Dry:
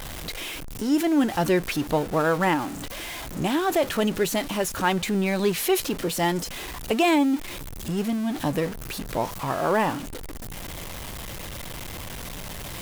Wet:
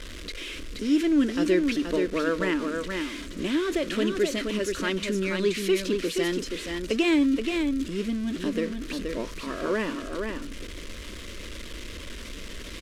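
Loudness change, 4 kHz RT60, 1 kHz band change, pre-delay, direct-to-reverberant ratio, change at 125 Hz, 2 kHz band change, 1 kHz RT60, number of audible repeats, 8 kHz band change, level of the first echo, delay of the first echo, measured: -1.0 dB, no reverb, -11.5 dB, no reverb, no reverb, -7.0 dB, -2.0 dB, no reverb, 1, -6.0 dB, -5.0 dB, 476 ms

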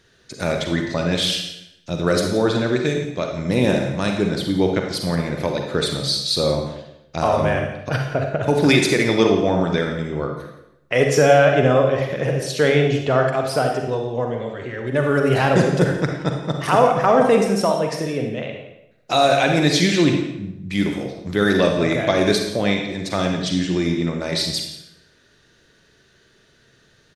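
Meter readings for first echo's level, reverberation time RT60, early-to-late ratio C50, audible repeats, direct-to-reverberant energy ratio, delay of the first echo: -15.0 dB, 0.85 s, 3.5 dB, 1, 2.5 dB, 172 ms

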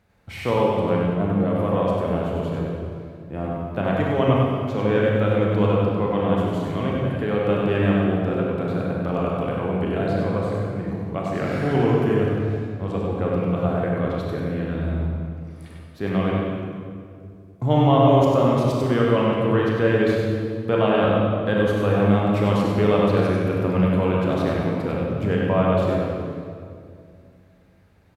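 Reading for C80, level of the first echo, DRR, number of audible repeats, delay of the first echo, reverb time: -1.0 dB, -3.5 dB, -4.0 dB, 1, 97 ms, 2.3 s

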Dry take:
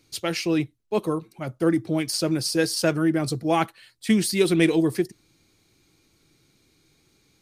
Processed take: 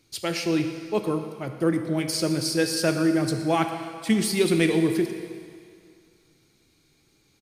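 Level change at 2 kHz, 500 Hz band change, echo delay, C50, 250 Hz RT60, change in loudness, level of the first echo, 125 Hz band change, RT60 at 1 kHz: -0.5 dB, -0.5 dB, 117 ms, 7.0 dB, 2.1 s, -1.0 dB, -17.5 dB, -0.5 dB, 2.2 s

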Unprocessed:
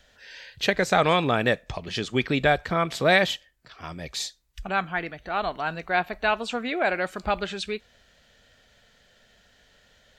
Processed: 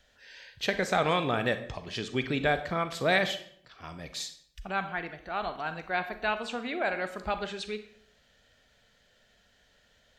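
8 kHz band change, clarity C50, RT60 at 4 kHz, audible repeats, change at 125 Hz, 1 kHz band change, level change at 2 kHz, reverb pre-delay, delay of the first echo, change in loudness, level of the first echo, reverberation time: -5.5 dB, 11.5 dB, 0.45 s, no echo, -5.5 dB, -5.5 dB, -5.5 dB, 34 ms, no echo, -5.5 dB, no echo, 0.60 s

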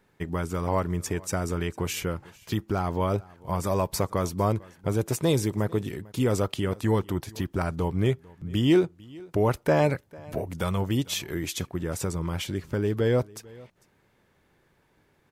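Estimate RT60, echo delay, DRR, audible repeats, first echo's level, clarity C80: no reverb, 448 ms, no reverb, 1, -23.0 dB, no reverb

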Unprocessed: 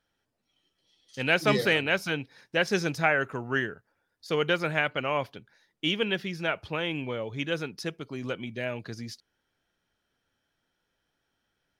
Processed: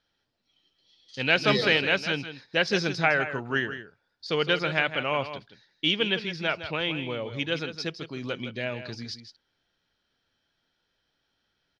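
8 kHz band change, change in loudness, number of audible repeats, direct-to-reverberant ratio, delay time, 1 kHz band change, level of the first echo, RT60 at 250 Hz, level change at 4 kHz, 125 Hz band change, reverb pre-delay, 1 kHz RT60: -1.5 dB, +1.5 dB, 1, no reverb, 161 ms, +1.0 dB, -11.0 dB, no reverb, +5.0 dB, +0.5 dB, no reverb, no reverb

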